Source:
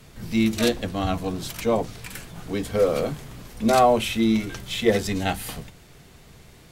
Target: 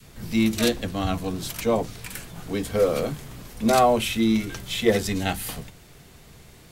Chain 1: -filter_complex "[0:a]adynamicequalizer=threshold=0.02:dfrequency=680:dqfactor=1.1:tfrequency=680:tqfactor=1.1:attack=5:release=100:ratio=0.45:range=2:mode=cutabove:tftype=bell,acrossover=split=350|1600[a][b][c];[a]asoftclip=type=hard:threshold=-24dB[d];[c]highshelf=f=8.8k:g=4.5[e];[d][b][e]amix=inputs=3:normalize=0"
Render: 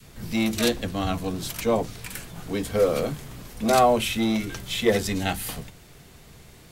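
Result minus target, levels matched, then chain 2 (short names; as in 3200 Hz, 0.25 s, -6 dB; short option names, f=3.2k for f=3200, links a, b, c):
hard clip: distortion +20 dB
-filter_complex "[0:a]adynamicequalizer=threshold=0.02:dfrequency=680:dqfactor=1.1:tfrequency=680:tqfactor=1.1:attack=5:release=100:ratio=0.45:range=2:mode=cutabove:tftype=bell,acrossover=split=350|1600[a][b][c];[a]asoftclip=type=hard:threshold=-16.5dB[d];[c]highshelf=f=8.8k:g=4.5[e];[d][b][e]amix=inputs=3:normalize=0"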